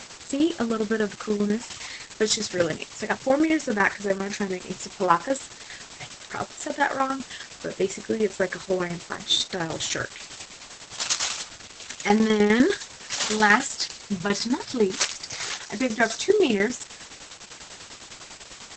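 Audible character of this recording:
a quantiser's noise floor 6 bits, dither triangular
tremolo saw down 10 Hz, depth 70%
Opus

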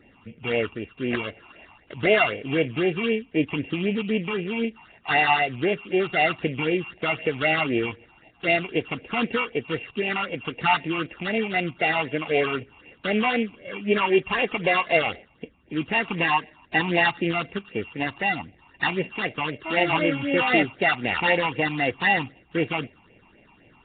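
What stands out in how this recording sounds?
a buzz of ramps at a fixed pitch in blocks of 16 samples
phaser sweep stages 8, 3.9 Hz, lowest notch 490–1,300 Hz
Nellymoser

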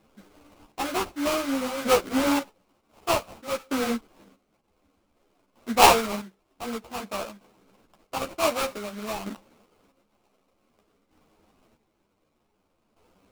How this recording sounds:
chopped level 0.54 Hz, depth 65%, duty 35%
aliases and images of a low sample rate 1,800 Hz, jitter 20%
a shimmering, thickened sound

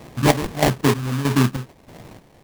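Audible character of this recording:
phaser sweep stages 8, 3.7 Hz, lowest notch 510–1,700 Hz
aliases and images of a low sample rate 1,400 Hz, jitter 20%
chopped level 1.6 Hz, depth 65%, duty 50%

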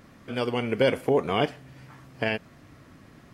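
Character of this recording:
background noise floor −53 dBFS
spectral slope −4.0 dB per octave

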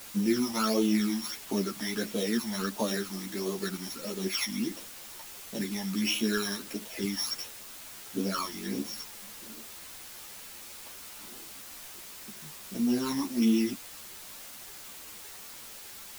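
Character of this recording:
a buzz of ramps at a fixed pitch in blocks of 8 samples
phaser sweep stages 12, 1.5 Hz, lowest notch 430–1,700 Hz
a quantiser's noise floor 8 bits, dither triangular
a shimmering, thickened sound

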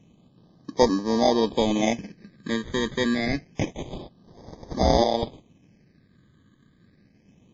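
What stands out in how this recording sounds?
aliases and images of a low sample rate 1,400 Hz, jitter 0%
phaser sweep stages 8, 0.27 Hz, lowest notch 750–2,600 Hz
WMA

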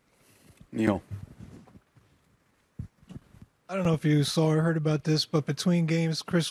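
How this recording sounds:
background noise floor −70 dBFS
spectral slope −6.0 dB per octave

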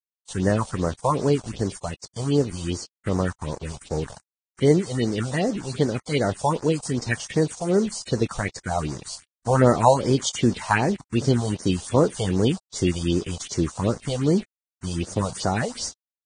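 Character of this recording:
a quantiser's noise floor 6 bits, dither none
phaser sweep stages 4, 2.6 Hz, lowest notch 290–3,100 Hz
Ogg Vorbis

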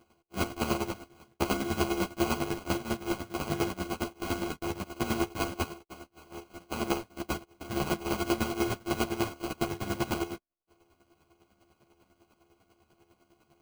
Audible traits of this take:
a buzz of ramps at a fixed pitch in blocks of 128 samples
chopped level 10 Hz, depth 65%, duty 25%
aliases and images of a low sample rate 1,800 Hz, jitter 0%
a shimmering, thickened sound

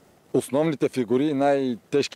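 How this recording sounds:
tremolo triangle 3.6 Hz, depth 35%

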